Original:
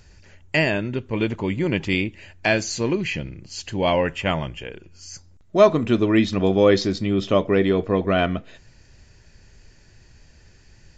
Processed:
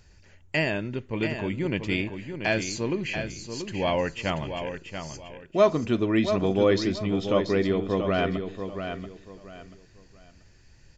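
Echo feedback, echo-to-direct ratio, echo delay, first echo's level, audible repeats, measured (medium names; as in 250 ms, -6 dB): 27%, -7.5 dB, 684 ms, -8.0 dB, 3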